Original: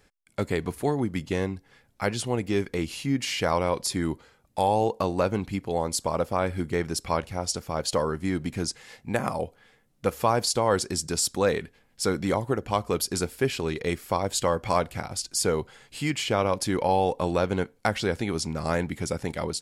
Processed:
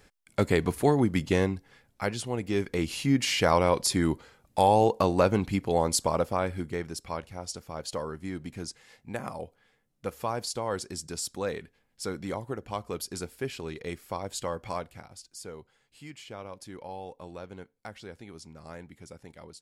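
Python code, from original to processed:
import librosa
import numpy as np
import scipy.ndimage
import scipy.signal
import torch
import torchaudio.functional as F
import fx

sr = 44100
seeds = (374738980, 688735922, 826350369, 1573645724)

y = fx.gain(x, sr, db=fx.line((1.35, 3.0), (2.28, -5.0), (3.02, 2.0), (5.95, 2.0), (7.01, -8.5), (14.64, -8.5), (15.3, -17.5)))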